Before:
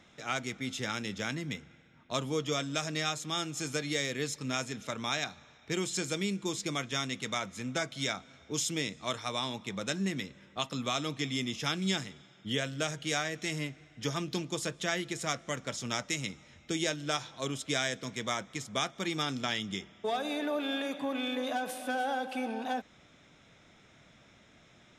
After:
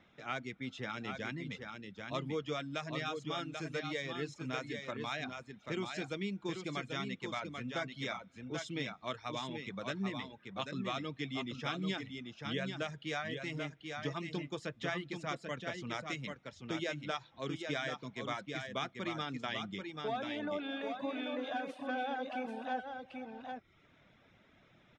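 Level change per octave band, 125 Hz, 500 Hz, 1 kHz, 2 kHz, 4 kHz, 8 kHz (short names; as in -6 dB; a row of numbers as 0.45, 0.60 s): -4.5, -4.0, -4.0, -4.5, -8.5, -18.0 dB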